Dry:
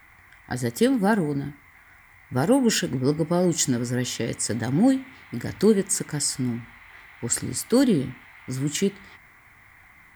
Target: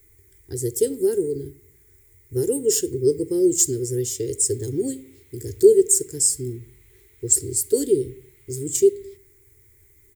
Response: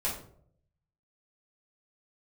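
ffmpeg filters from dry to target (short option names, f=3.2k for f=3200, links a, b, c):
-filter_complex "[0:a]firequalizer=gain_entry='entry(110,0);entry(200,-24);entry(390,11);entry(640,-28);entry(1400,-26);entry(2200,-18);entry(7400,6)':delay=0.05:min_phase=1,asplit=2[a][b];[1:a]atrim=start_sample=2205[c];[b][c]afir=irnorm=-1:irlink=0,volume=-22dB[d];[a][d]amix=inputs=2:normalize=0,volume=1.5dB"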